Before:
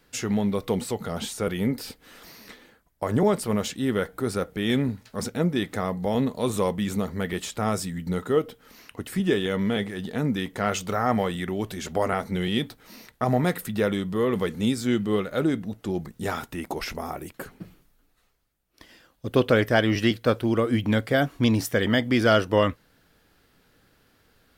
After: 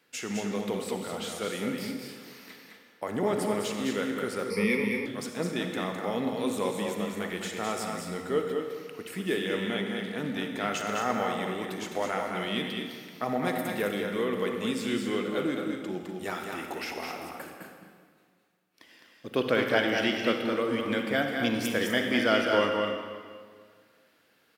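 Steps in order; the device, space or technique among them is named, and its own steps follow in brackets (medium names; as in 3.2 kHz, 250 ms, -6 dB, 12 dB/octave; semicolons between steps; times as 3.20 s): stadium PA (high-pass 210 Hz 12 dB/octave; peaking EQ 2.4 kHz +5 dB 1 oct; loudspeakers at several distances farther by 72 m -5 dB, 85 m -11 dB; reverberation RT60 1.9 s, pre-delay 40 ms, DRR 5 dB); 4.50–5.06 s: rippled EQ curve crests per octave 0.87, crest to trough 18 dB; trim -6.5 dB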